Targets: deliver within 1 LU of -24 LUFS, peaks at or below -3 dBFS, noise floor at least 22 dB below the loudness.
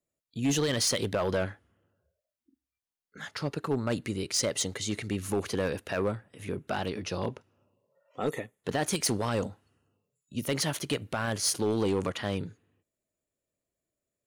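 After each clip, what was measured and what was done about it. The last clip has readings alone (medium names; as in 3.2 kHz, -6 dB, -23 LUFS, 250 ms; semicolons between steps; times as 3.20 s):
clipped samples 0.9%; clipping level -21.5 dBFS; loudness -31.0 LUFS; peak level -21.5 dBFS; loudness target -24.0 LUFS
-> clip repair -21.5 dBFS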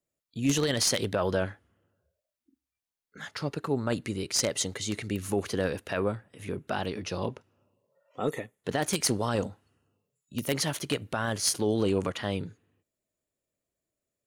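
clipped samples 0.0%; loudness -30.0 LUFS; peak level -12.5 dBFS; loudness target -24.0 LUFS
-> trim +6 dB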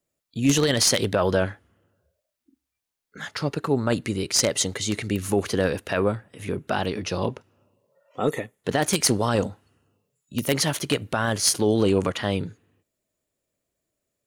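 loudness -24.0 LUFS; peak level -6.5 dBFS; noise floor -83 dBFS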